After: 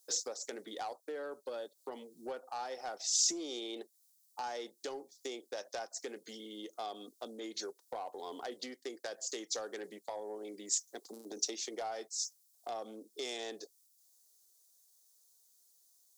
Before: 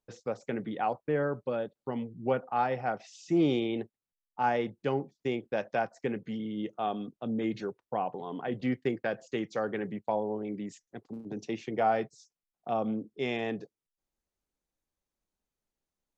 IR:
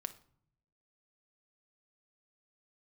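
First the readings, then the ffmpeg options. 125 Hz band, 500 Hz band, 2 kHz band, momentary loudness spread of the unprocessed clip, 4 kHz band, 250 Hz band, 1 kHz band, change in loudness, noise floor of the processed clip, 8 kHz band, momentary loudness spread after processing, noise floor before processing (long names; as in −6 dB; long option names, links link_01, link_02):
below −25 dB, −10.5 dB, −10.5 dB, 10 LU, +6.0 dB, −15.5 dB, −11.0 dB, −7.0 dB, −71 dBFS, can't be measured, 13 LU, below −85 dBFS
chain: -af "acompressor=threshold=-41dB:ratio=4,highpass=frequency=330:width=0.5412,highpass=frequency=330:width=1.3066,asoftclip=type=tanh:threshold=-34dB,aexciter=amount=12.6:drive=4.3:freq=3900,volume=2.5dB"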